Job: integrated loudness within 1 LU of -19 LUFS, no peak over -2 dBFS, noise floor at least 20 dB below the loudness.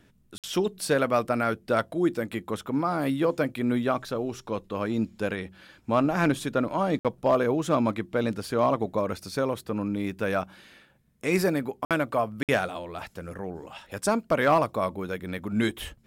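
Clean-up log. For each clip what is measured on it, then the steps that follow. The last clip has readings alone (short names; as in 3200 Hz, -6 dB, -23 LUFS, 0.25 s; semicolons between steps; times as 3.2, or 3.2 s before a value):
dropouts 4; longest dropout 57 ms; loudness -27.5 LUFS; peak -13.0 dBFS; loudness target -19.0 LUFS
-> interpolate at 0.38/6.99/11.85/12.43, 57 ms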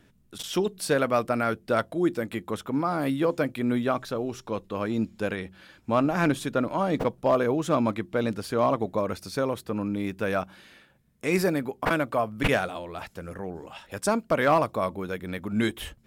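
dropouts 0; loudness -27.0 LUFS; peak -11.5 dBFS; loudness target -19.0 LUFS
-> gain +8 dB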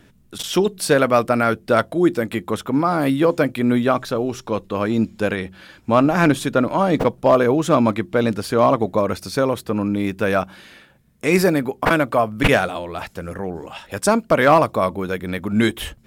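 loudness -19.0 LUFS; peak -3.5 dBFS; noise floor -53 dBFS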